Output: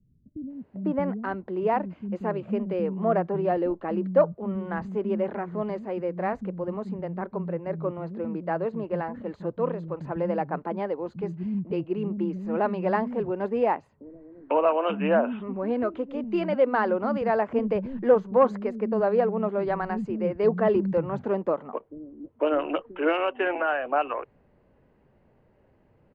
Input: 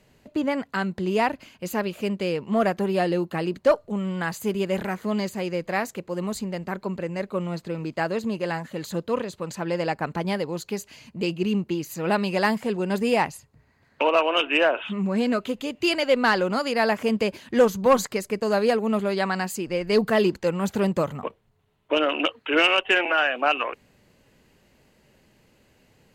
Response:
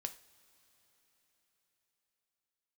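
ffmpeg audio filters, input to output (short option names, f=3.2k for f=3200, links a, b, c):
-filter_complex "[0:a]lowpass=1.1k,acrossover=split=230[a][b];[b]adelay=500[c];[a][c]amix=inputs=2:normalize=0"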